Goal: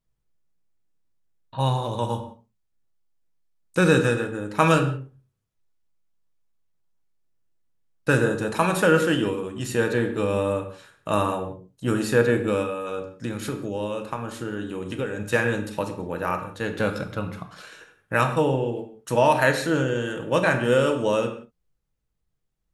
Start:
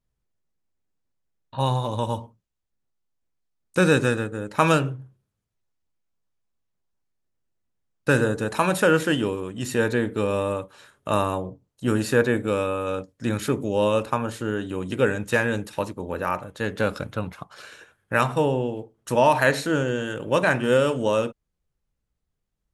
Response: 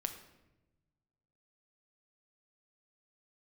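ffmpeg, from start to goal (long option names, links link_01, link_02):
-filter_complex "[0:a]asplit=3[link_01][link_02][link_03];[link_01]afade=type=out:start_time=12.62:duration=0.02[link_04];[link_02]acompressor=threshold=-25dB:ratio=6,afade=type=in:start_time=12.62:duration=0.02,afade=type=out:start_time=15.2:duration=0.02[link_05];[link_03]afade=type=in:start_time=15.2:duration=0.02[link_06];[link_04][link_05][link_06]amix=inputs=3:normalize=0[link_07];[1:a]atrim=start_sample=2205,afade=type=out:start_time=0.24:duration=0.01,atrim=end_sample=11025[link_08];[link_07][link_08]afir=irnorm=-1:irlink=0"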